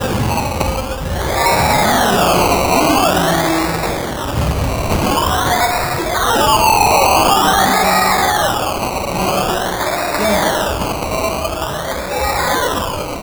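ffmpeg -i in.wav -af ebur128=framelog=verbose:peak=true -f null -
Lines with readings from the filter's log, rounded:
Integrated loudness:
  I:         -14.6 LUFS
  Threshold: -24.6 LUFS
Loudness range:
  LRA:         4.9 LU
  Threshold: -34.3 LUFS
  LRA low:   -17.3 LUFS
  LRA high:  -12.3 LUFS
True peak:
  Peak:       -4.8 dBFS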